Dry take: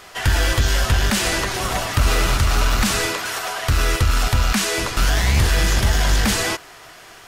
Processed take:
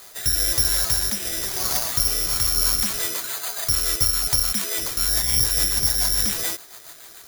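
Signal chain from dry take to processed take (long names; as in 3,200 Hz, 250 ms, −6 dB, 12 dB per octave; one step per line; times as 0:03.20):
low-shelf EQ 180 Hz −4.5 dB
in parallel at 0 dB: downward compressor, threshold −29 dBFS, peak gain reduction 13 dB
on the sum: rotating-speaker cabinet horn 1 Hz, later 7 Hz, at 0:02.09
bad sample-rate conversion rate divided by 8×, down filtered, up zero stuff
level −10.5 dB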